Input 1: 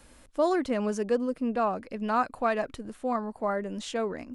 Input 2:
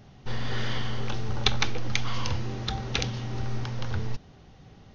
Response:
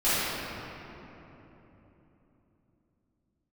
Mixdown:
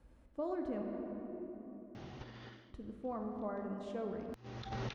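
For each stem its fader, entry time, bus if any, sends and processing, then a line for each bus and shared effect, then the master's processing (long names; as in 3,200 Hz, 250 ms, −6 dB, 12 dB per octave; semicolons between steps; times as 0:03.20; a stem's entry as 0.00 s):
−15.0 dB, 0.00 s, muted 0:00.82–0:02.70, send −17.5 dB, spectral tilt −4.5 dB per octave
−1.5 dB, 1.95 s, no send, compressor whose output falls as the input rises −32 dBFS, ratio −0.5; high-shelf EQ 5,800 Hz −11 dB; automatic ducking −19 dB, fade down 0.25 s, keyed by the first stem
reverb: on, RT60 3.5 s, pre-delay 3 ms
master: high-pass filter 42 Hz; low-shelf EQ 300 Hz −6 dB; downward compressor, threshold −34 dBFS, peak gain reduction 5 dB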